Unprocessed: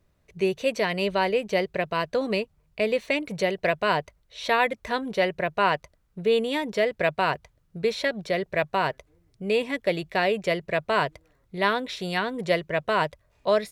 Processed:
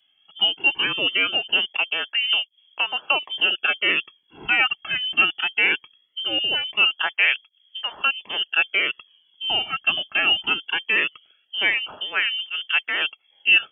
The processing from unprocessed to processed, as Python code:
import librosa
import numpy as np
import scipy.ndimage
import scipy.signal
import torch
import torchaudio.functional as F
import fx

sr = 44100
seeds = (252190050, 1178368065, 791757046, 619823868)

y = fx.peak_eq(x, sr, hz=2200.0, db=-5.0, octaves=0.24)
y = fx.freq_invert(y, sr, carrier_hz=3300)
y = fx.flanger_cancel(y, sr, hz=0.2, depth_ms=2.2)
y = F.gain(torch.from_numpy(y), 6.0).numpy()